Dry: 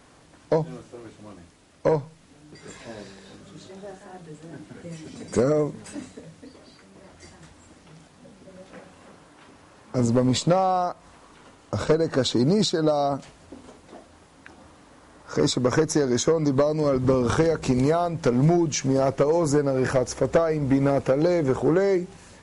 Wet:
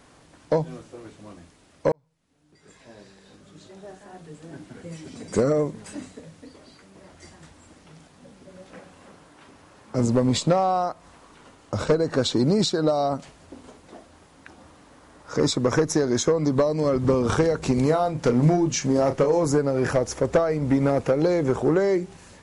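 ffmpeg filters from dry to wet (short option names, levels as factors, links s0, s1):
-filter_complex "[0:a]asettb=1/sr,asplit=3[s0][s1][s2];[s0]atrim=end=17.864[s3];[s1]atrim=start=17.86:end=19.45,asetpts=PTS-STARTPTS,afade=t=in:d=0.004:c=qsin,afade=t=out:st=1.586:d=0.004:c=qsin,asplit=2[s4][s5];[s5]adelay=33,volume=0.355[s6];[s4][s6]amix=inputs=2:normalize=0,atrim=end_sample=70119[s7];[s2]atrim=start=19.446[s8];[s3][s7]acrossfade=d=0.004:c1=hsin:c2=qsin[s9];[s9][s8]acrossfade=d=0.004:c1=qsin:c2=hsin,asplit=2[s10][s11];[s10]atrim=end=1.92,asetpts=PTS-STARTPTS,afade=t=out:st=1.916:d=0.004:c=hsin[s12];[s11]atrim=start=1.92,asetpts=PTS-STARTPTS,afade=t=in:d=2.58[s13];[s12][s13]concat=n=2:v=0:a=1"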